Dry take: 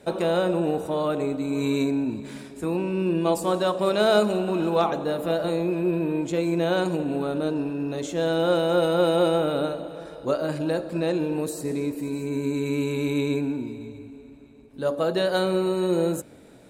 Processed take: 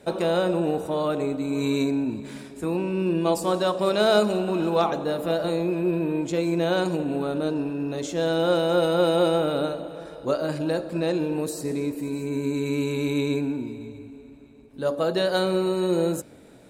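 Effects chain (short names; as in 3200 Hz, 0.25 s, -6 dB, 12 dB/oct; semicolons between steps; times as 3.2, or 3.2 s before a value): dynamic EQ 5100 Hz, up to +5 dB, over -51 dBFS, Q 2.5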